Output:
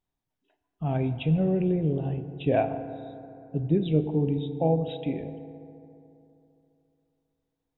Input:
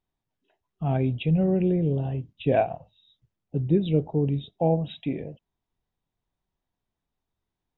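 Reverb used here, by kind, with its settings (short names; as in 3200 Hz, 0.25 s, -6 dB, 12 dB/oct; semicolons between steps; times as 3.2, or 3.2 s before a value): FDN reverb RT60 3 s, high-frequency decay 0.4×, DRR 9.5 dB; gain -2 dB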